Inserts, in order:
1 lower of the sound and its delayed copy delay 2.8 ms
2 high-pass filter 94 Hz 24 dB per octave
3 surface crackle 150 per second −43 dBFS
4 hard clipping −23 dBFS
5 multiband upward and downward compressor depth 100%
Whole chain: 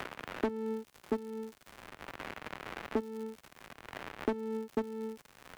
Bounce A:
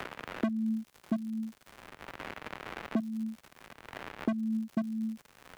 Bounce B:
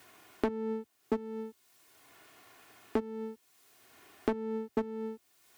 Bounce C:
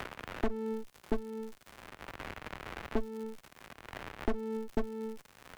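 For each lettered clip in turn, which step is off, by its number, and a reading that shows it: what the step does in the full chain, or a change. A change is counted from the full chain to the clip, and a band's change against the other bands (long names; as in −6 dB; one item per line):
1, 500 Hz band −8.5 dB
3, 4 kHz band −5.5 dB
2, 125 Hz band +4.0 dB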